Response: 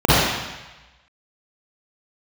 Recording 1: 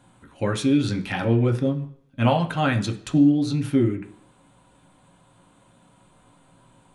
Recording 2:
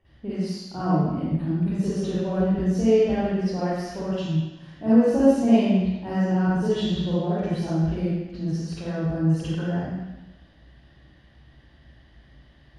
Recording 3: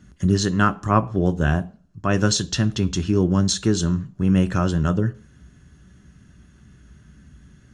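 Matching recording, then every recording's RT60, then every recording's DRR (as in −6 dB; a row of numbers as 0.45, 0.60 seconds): 2; non-exponential decay, 1.1 s, 0.40 s; 3.5, −11.0, 11.0 decibels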